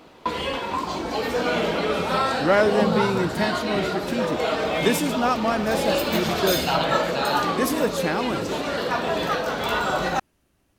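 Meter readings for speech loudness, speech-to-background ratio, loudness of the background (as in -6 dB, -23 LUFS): -25.5 LUFS, -1.0 dB, -24.5 LUFS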